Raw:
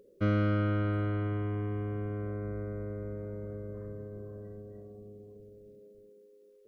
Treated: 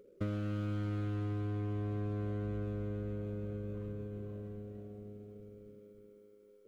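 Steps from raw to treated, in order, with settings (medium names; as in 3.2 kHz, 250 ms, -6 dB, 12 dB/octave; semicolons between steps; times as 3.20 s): median filter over 25 samples; compression 6:1, threshold -33 dBFS, peak gain reduction 9.5 dB; algorithmic reverb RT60 1.6 s, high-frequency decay 0.8×, pre-delay 105 ms, DRR 14.5 dB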